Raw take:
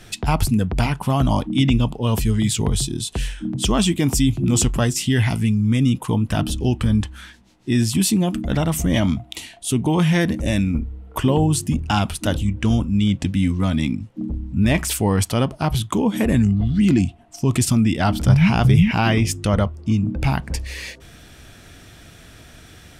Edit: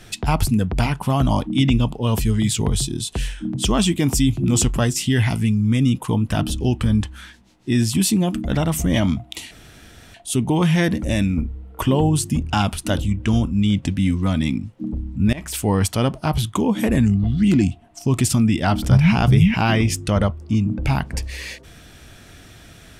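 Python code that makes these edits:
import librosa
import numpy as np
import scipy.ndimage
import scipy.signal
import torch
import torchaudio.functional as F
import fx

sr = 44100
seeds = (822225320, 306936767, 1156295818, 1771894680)

y = fx.edit(x, sr, fx.insert_room_tone(at_s=9.51, length_s=0.63),
    fx.fade_in_from(start_s=14.7, length_s=0.36, floor_db=-22.5), tone=tone)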